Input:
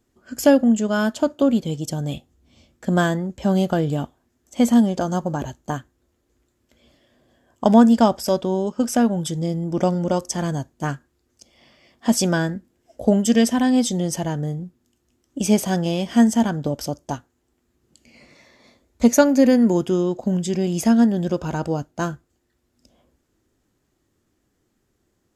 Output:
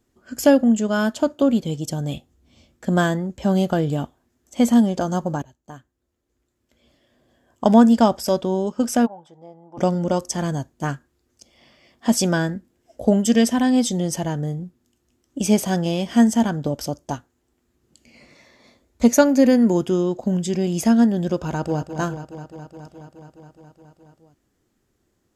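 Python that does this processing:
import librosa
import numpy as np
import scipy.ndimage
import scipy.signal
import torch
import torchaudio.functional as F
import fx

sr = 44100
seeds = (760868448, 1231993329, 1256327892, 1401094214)

y = fx.bandpass_q(x, sr, hz=840.0, q=4.5, at=(9.05, 9.77), fade=0.02)
y = fx.echo_throw(y, sr, start_s=21.47, length_s=0.41, ms=210, feedback_pct=80, wet_db=-10.0)
y = fx.edit(y, sr, fx.fade_in_from(start_s=5.42, length_s=2.26, floor_db=-20.5), tone=tone)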